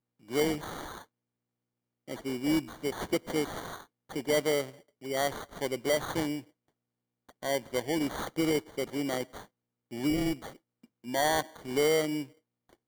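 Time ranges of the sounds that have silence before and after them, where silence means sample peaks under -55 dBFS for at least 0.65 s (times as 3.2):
2.08–6.5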